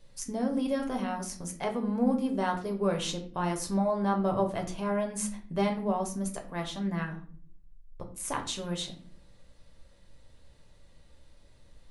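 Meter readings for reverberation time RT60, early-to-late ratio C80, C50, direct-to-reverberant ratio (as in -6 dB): 0.50 s, 15.0 dB, 11.0 dB, 2.5 dB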